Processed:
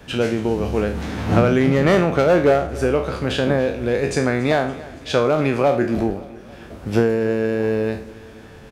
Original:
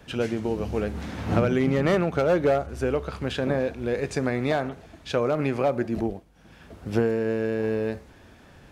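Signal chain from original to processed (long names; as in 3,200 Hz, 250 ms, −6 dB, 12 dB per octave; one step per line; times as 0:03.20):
peak hold with a decay on every bin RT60 0.43 s
repeating echo 282 ms, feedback 59%, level −20 dB
level +5.5 dB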